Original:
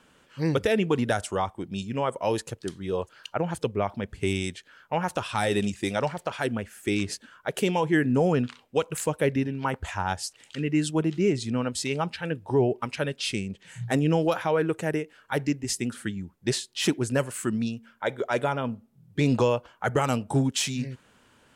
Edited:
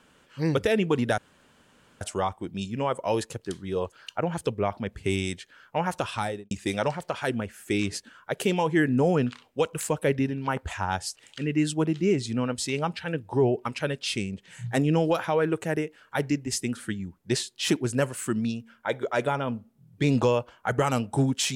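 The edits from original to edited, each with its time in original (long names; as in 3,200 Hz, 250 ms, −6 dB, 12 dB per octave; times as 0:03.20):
0:01.18: splice in room tone 0.83 s
0:05.28–0:05.68: fade out and dull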